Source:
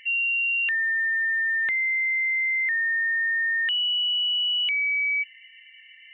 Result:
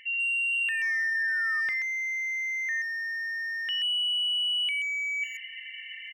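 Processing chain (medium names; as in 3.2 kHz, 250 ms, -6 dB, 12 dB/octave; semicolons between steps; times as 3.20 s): reverse; compression 5:1, threshold -38 dBFS, peak gain reduction 13 dB; reverse; painted sound fall, 0.52–1.61 s, 1.2–3 kHz -49 dBFS; speakerphone echo 130 ms, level -6 dB; trim +7.5 dB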